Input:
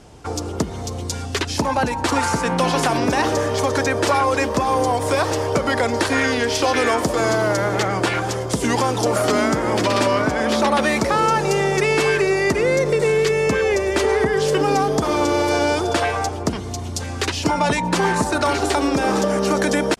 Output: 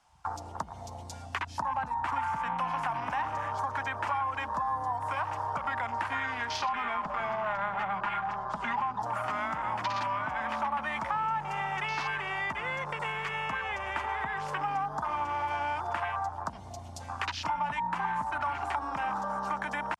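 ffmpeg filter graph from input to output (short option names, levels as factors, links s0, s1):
-filter_complex "[0:a]asettb=1/sr,asplit=3[s0][s1][s2];[s0]atrim=end=6.624[s3];[s1]atrim=start=6.62:end=9.02,asetpts=PTS-STARTPTS,afade=t=in:d=0.004:c=qsin,afade=t=out:st=2.396:d=0.004:c=qsin,lowpass=3800,aecho=1:1:4.9:0.88,atrim=end_sample=105840,asoftclip=type=hard:threshold=0.237[s4];[s2]atrim=start=9.016[s5];[s3][s4]acrossfade=d=0.004:c1=hsin:c2=qsin[s6];[s6][s5]acrossfade=d=0.004:c1=qsin:c2=hsin,afwtdn=0.0447,lowshelf=f=620:t=q:w=3:g=-13,acrossover=split=230|470[s7][s8][s9];[s7]acompressor=threshold=0.00891:ratio=4[s10];[s8]acompressor=threshold=0.00251:ratio=4[s11];[s9]acompressor=threshold=0.0316:ratio=4[s12];[s10][s11][s12]amix=inputs=3:normalize=0,volume=0.794"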